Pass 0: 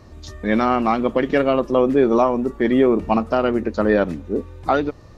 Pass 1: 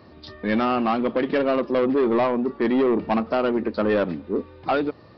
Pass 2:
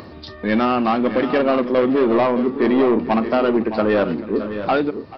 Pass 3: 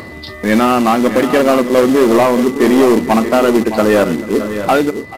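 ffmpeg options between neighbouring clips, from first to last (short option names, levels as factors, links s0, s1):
-af "highpass=150,aresample=11025,asoftclip=type=tanh:threshold=0.178,aresample=44100"
-filter_complex "[0:a]acompressor=mode=upward:threshold=0.0178:ratio=2.5,asplit=2[s0][s1];[s1]aecho=0:1:41|437|616|645:0.141|0.126|0.282|0.178[s2];[s0][s2]amix=inputs=2:normalize=0,volume=1.5"
-af "acrusher=bits=4:mode=log:mix=0:aa=0.000001,aresample=32000,aresample=44100,aeval=exprs='val(0)+0.01*sin(2*PI*2000*n/s)':c=same,volume=2"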